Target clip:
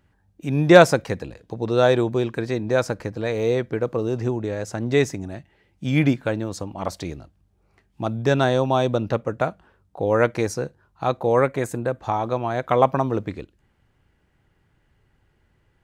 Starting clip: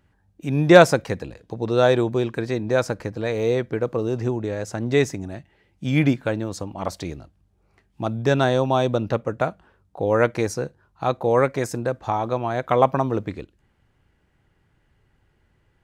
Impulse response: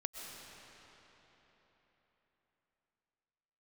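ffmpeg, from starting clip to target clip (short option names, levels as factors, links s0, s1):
-filter_complex "[0:a]asettb=1/sr,asplit=3[s0][s1][s2];[s0]atrim=end=11.404[s3];[s1]atrim=start=11.4:end=11.99,asetpts=PTS-STARTPTS,afade=t=in:d=0.004:c=qsin,afade=t=out:st=0.586:d=0.004:c=qsin,equalizer=f=5300:t=o:w=0.37:g=-14[s4];[s2]atrim=start=11.986[s5];[s3][s4]acrossfade=d=0.004:c1=hsin:c2=qsin[s6];[s6][s5]acrossfade=d=0.004:c1=qsin:c2=hsin"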